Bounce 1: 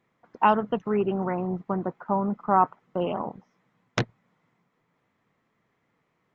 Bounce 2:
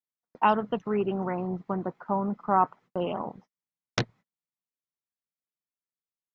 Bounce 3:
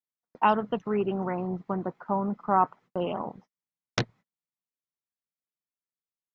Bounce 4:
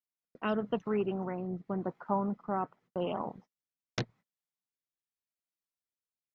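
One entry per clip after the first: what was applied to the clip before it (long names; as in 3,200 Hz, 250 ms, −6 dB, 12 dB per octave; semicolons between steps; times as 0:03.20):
noise gate −48 dBFS, range −35 dB; parametric band 4,800 Hz +6.5 dB 0.99 octaves; level −2.5 dB
no processing that can be heard
rotating-speaker cabinet horn 0.85 Hz; tape wow and flutter 18 cents; level −2.5 dB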